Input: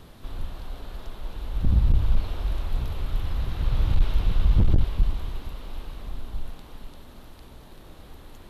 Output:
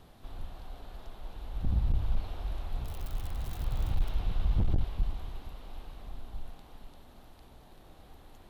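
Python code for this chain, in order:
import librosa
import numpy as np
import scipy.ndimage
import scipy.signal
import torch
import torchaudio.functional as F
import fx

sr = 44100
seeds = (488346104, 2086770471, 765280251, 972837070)

y = fx.crossing_spikes(x, sr, level_db=-28.5, at=(2.84, 4.1))
y = fx.peak_eq(y, sr, hz=750.0, db=6.5, octaves=0.4)
y = y * librosa.db_to_amplitude(-8.5)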